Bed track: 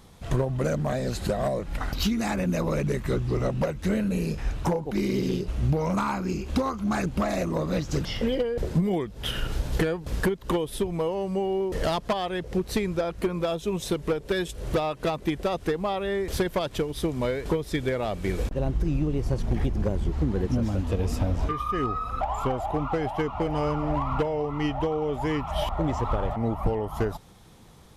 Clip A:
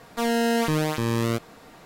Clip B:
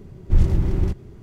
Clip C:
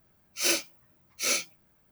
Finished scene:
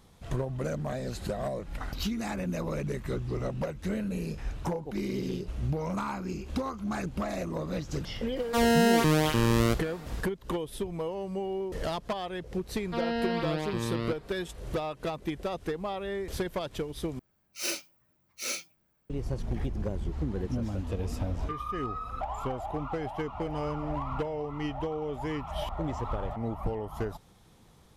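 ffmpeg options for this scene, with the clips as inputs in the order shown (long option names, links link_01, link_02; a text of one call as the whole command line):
ffmpeg -i bed.wav -i cue0.wav -i cue1.wav -i cue2.wav -filter_complex "[1:a]asplit=2[link_01][link_02];[0:a]volume=-6.5dB[link_03];[link_01]acontrast=76[link_04];[link_02]aresample=11025,aresample=44100[link_05];[link_03]asplit=2[link_06][link_07];[link_06]atrim=end=17.194[link_08];[3:a]atrim=end=1.91,asetpts=PTS-STARTPTS,volume=-7dB[link_09];[link_07]atrim=start=19.096[link_10];[link_04]atrim=end=1.85,asetpts=PTS-STARTPTS,volume=-6.5dB,afade=type=in:duration=0.004:curve=hsin,afade=type=out:start_time=1.846:duration=0.004:curve=hsin,adelay=8360[link_11];[link_05]atrim=end=1.85,asetpts=PTS-STARTPTS,volume=-8dB,afade=type=in:duration=0.004:curve=hsin,afade=type=out:start_time=1.846:duration=0.004:curve=hsin,adelay=12750[link_12];[link_08][link_09]acrossfade=duration=0.004:curve1=hsin:curve2=hsin[link_13];[link_13][link_10]acrossfade=duration=0.004:curve1=hsin:curve2=hsin[link_14];[link_14][link_11][link_12]amix=inputs=3:normalize=0" out.wav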